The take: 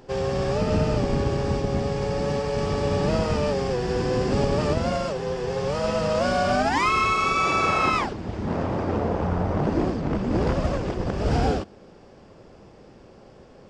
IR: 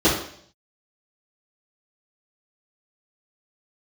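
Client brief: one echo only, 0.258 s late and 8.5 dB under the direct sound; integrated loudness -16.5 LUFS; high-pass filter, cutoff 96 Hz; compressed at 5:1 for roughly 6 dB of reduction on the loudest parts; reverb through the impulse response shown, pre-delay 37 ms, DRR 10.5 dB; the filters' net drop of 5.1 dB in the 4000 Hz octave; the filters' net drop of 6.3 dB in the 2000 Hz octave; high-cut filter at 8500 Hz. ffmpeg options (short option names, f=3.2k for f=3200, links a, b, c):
-filter_complex "[0:a]highpass=96,lowpass=8.5k,equalizer=f=2k:t=o:g=-7,equalizer=f=4k:t=o:g=-4.5,acompressor=threshold=-26dB:ratio=5,aecho=1:1:258:0.376,asplit=2[a][b];[1:a]atrim=start_sample=2205,adelay=37[c];[b][c]afir=irnorm=-1:irlink=0,volume=-30.5dB[d];[a][d]amix=inputs=2:normalize=0,volume=12dB"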